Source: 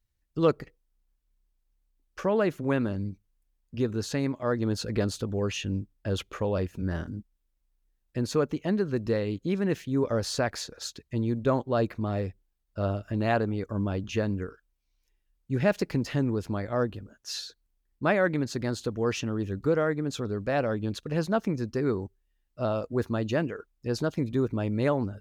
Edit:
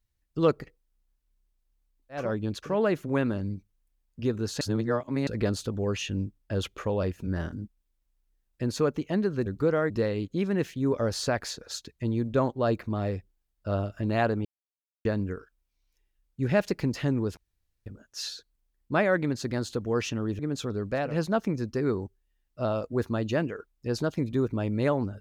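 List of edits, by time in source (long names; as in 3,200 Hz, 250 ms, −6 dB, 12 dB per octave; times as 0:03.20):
0:04.16–0:04.82: reverse
0:13.56–0:14.16: silence
0:16.48–0:16.97: fill with room tone
0:19.50–0:19.94: move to 0:09.01
0:20.61–0:21.06: move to 0:02.21, crossfade 0.24 s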